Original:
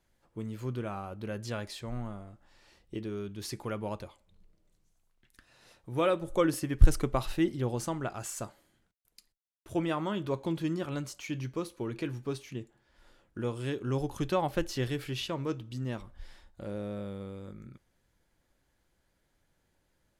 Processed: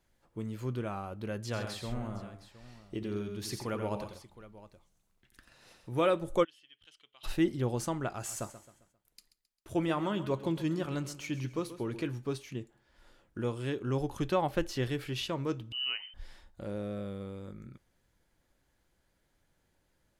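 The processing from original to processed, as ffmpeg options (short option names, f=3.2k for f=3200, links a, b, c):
-filter_complex "[0:a]asplit=3[a][b][c];[a]afade=t=out:st=1.52:d=0.02[d];[b]aecho=1:1:87|131|715:0.447|0.299|0.15,afade=t=in:st=1.52:d=0.02,afade=t=out:st=5.92:d=0.02[e];[c]afade=t=in:st=5.92:d=0.02[f];[d][e][f]amix=inputs=3:normalize=0,asplit=3[g][h][i];[g]afade=t=out:st=6.43:d=0.02[j];[h]bandpass=f=3.1k:t=q:w=13,afade=t=in:st=6.43:d=0.02,afade=t=out:st=7.23:d=0.02[k];[i]afade=t=in:st=7.23:d=0.02[l];[j][k][l]amix=inputs=3:normalize=0,asettb=1/sr,asplit=3[m][n][o];[m]atrim=end=8.104[p];[n]atrim=start=8.1:end=12.02,asetpts=PTS-STARTPTS,afade=t=in:d=0.004:c=qsin,afade=t=out:st=3.916:d=0.004:c=qsin,aecho=1:1:133|266|399|532:0.2|0.0798|0.0319|0.0128,atrim=end_sample=172872[q];[o]atrim=start=12.016[r];[p][q]acrossfade=d=0.004:c1=hsin:c2=qsin[s];[s][r]acrossfade=d=0.004:c1=qsin:c2=hsin,asettb=1/sr,asplit=3[t][u][v];[t]atrim=end=13.554[w];[u]atrim=start=13.55:end=15.16,asetpts=PTS-STARTPTS,afade=t=in:d=0.004:c=qsin,afade=t=out:st=1.606:d=0.004:c=qsin,bass=f=250:g=-1,treble=f=4k:g=-3[x];[v]atrim=start=15.156[y];[w][x]acrossfade=d=0.004:c1=hsin:c2=qsin[z];[z][y]acrossfade=d=0.004:c1=qsin:c2=hsin,asettb=1/sr,asplit=3[aa][ab][ac];[aa]atrim=end=15.724[ad];[ab]atrim=start=15.72:end=16.14,asetpts=PTS-STARTPTS,afade=t=in:d=0.004:c=qsin,afade=t=out:st=0.416:d=0.004:c=qsin,lowpass=f=2.6k:t=q:w=0.5098,lowpass=f=2.6k:t=q:w=0.6013,lowpass=f=2.6k:t=q:w=0.9,lowpass=f=2.6k:t=q:w=2.563,afreqshift=-3100[ae];[ac]atrim=start=16.136[af];[ad][ae]acrossfade=d=0.004:c1=hsin:c2=qsin[ag];[ag][af]acrossfade=d=0.004:c1=qsin:c2=hsin,asettb=1/sr,asplit=3[ah][ai][aj];[ah]atrim=end=16.834[ak];[ai]atrim=start=16.83:end=17.26,asetpts=PTS-STARTPTS,afade=t=in:d=0.004:c=qsin,afade=t=out:st=0.426:d=0.004:c=qsin,asuperstop=centerf=900:order=4:qfactor=7.3[al];[aj]atrim=start=17.256[am];[ak][al]acrossfade=d=0.004:c1=hsin:c2=qsin[an];[an][am]acrossfade=d=0.004:c1=qsin:c2=hsin"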